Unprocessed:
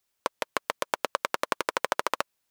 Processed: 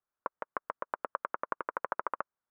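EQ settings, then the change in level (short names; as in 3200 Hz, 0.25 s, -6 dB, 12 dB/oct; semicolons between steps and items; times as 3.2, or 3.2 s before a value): ladder low-pass 1600 Hz, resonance 45%; air absorption 100 m; -1.0 dB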